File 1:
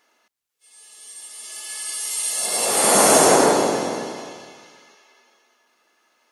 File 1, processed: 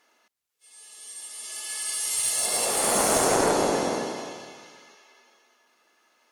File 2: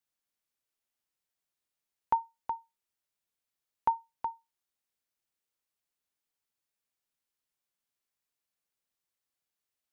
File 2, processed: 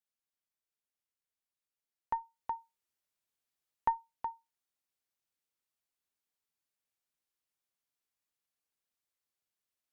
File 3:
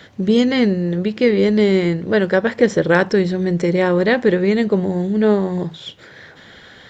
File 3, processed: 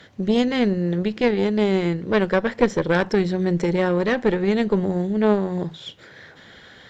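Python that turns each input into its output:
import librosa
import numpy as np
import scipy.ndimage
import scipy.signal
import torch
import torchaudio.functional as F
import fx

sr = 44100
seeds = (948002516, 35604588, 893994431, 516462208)

y = fx.cheby_harmonics(x, sr, harmonics=(2,), levels_db=(-7,), full_scale_db=-1.0)
y = fx.rider(y, sr, range_db=4, speed_s=0.5)
y = F.gain(torch.from_numpy(y), -5.0).numpy()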